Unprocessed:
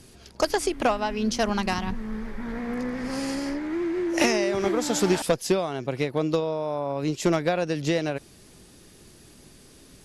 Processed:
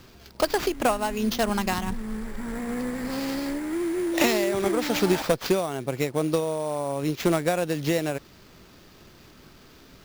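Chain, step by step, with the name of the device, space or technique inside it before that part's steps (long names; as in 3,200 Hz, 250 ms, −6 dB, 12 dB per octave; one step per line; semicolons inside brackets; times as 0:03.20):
early companding sampler (sample-rate reduction 9,400 Hz, jitter 0%; log-companded quantiser 6 bits)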